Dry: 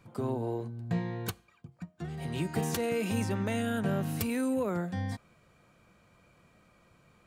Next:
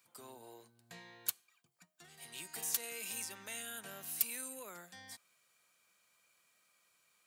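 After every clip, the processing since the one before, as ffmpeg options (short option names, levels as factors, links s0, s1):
-af "aderivative,volume=1.41"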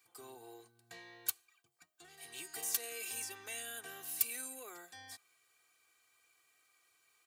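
-af "aecho=1:1:2.6:0.84,volume=0.794"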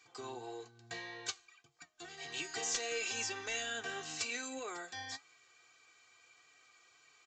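-af "aresample=16000,asoftclip=type=tanh:threshold=0.0133,aresample=44100,flanger=delay=6.3:depth=2.6:regen=65:speed=1.7:shape=triangular,volume=4.47"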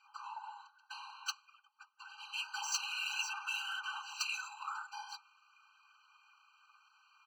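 -af "adynamicsmooth=sensitivity=7.5:basefreq=2800,afftfilt=real='hypot(re,im)*cos(2*PI*random(0))':imag='hypot(re,im)*sin(2*PI*random(1))':win_size=512:overlap=0.75,afftfilt=real='re*eq(mod(floor(b*sr/1024/790),2),1)':imag='im*eq(mod(floor(b*sr/1024/790),2),1)':win_size=1024:overlap=0.75,volume=4.22"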